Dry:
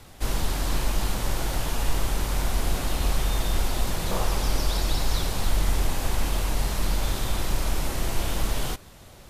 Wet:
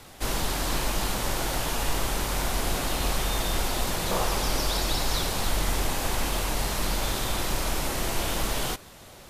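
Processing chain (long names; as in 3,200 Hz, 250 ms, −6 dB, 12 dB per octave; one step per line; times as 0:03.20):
low-shelf EQ 160 Hz −8.5 dB
level +3 dB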